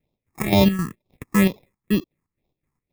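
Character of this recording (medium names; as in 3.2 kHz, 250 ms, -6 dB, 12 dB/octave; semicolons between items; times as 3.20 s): aliases and images of a low sample rate 1.5 kHz, jitter 0%; phasing stages 4, 2.1 Hz, lowest notch 550–1600 Hz; chopped level 3.8 Hz, depth 65%, duty 60%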